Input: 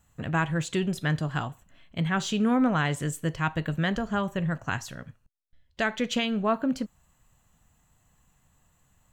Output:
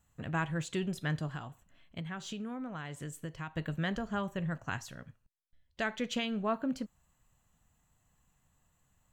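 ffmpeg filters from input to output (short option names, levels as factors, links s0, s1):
-filter_complex "[0:a]asettb=1/sr,asplit=3[s0][s1][s2];[s0]atrim=end=1.344[s3];[s1]atrim=start=1.34:end=3.56,asetpts=PTS-STARTPTS,afade=t=in:d=0.004:c=qsin,afade=t=out:st=2.216:d=0.004:c=qsin,acompressor=threshold=0.0316:ratio=10[s4];[s2]atrim=start=3.556[s5];[s3][s4]acrossfade=d=0.004:c1=hsin:c2=qsin[s6];[s6][s5]acrossfade=d=0.004:c1=qsin:c2=hsin,volume=0.447"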